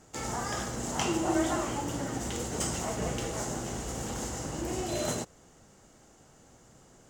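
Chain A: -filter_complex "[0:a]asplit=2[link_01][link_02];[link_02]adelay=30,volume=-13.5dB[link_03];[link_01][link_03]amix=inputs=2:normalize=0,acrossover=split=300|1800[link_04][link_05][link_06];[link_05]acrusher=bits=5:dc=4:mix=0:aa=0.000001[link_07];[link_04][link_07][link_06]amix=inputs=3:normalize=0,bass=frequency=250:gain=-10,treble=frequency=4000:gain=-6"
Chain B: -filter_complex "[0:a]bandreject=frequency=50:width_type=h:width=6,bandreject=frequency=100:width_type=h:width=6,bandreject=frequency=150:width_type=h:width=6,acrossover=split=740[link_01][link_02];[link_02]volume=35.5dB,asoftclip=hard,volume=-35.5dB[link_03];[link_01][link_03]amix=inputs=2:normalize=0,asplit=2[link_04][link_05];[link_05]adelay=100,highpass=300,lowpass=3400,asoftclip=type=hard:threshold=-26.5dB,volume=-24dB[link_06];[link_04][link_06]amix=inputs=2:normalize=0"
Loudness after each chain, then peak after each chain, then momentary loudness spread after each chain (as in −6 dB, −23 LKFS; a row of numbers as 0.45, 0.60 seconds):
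−37.0, −33.5 LKFS; −15.5, −18.0 dBFS; 9, 7 LU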